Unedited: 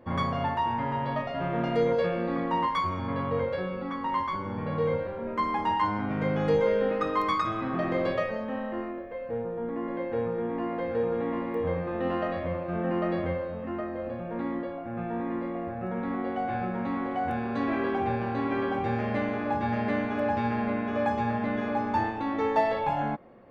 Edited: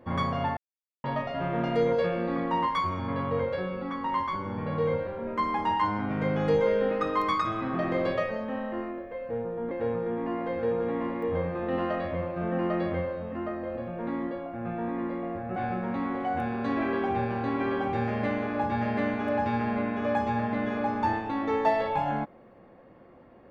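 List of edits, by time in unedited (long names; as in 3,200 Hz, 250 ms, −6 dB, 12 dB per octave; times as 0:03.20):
0:00.57–0:01.04: silence
0:09.71–0:10.03: remove
0:15.88–0:16.47: remove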